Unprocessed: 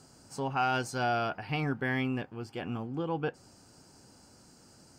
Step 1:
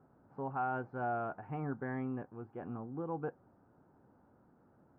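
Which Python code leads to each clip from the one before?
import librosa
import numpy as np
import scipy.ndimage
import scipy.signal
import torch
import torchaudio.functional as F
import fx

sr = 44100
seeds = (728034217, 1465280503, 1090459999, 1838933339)

y = scipy.signal.sosfilt(scipy.signal.butter(4, 1400.0, 'lowpass', fs=sr, output='sos'), x)
y = fx.low_shelf(y, sr, hz=89.0, db=-6.0)
y = y * librosa.db_to_amplitude(-5.5)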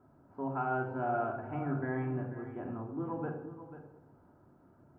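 y = x + 10.0 ** (-12.5 / 20.0) * np.pad(x, (int(490 * sr / 1000.0), 0))[:len(x)]
y = fx.room_shoebox(y, sr, seeds[0], volume_m3=2500.0, walls='furnished', distance_m=2.9)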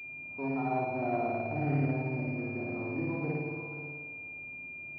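y = fx.room_flutter(x, sr, wall_m=9.6, rt60_s=1.4)
y = fx.env_lowpass_down(y, sr, base_hz=870.0, full_db=-30.0)
y = fx.pwm(y, sr, carrier_hz=2400.0)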